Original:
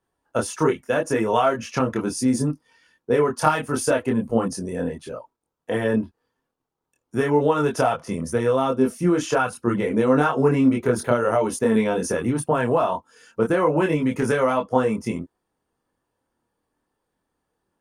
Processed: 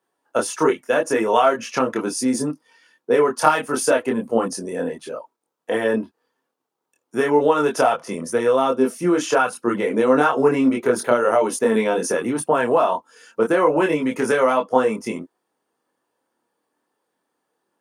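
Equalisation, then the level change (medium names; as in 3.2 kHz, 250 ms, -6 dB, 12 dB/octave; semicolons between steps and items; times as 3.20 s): high-pass 280 Hz 12 dB/octave; +3.5 dB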